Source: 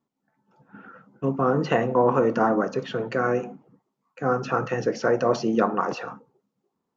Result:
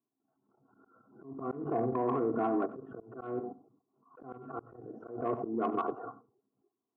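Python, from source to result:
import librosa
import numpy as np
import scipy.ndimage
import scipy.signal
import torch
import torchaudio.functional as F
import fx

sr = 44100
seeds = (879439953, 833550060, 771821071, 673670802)

p1 = fx.peak_eq(x, sr, hz=180.0, db=5.5, octaves=2.1)
p2 = fx.level_steps(p1, sr, step_db=12)
p3 = scipy.signal.sosfilt(scipy.signal.ellip(4, 1.0, 40, 1300.0, 'lowpass', fs=sr, output='sos'), p2)
p4 = p3 + 0.91 * np.pad(p3, (int(2.8 * sr / 1000.0), 0))[:len(p3)]
p5 = fx.auto_swell(p4, sr, attack_ms=132.0)
p6 = 10.0 ** (-14.5 / 20.0) * np.tanh(p5 / 10.0 ** (-14.5 / 20.0))
p7 = scipy.signal.sosfilt(scipy.signal.butter(4, 96.0, 'highpass', fs=sr, output='sos'), p6)
p8 = p7 + fx.echo_single(p7, sr, ms=93, db=-17.5, dry=0)
p9 = fx.auto_swell(p8, sr, attack_ms=240.0)
p10 = fx.pre_swell(p9, sr, db_per_s=95.0)
y = p10 * librosa.db_to_amplitude(-6.5)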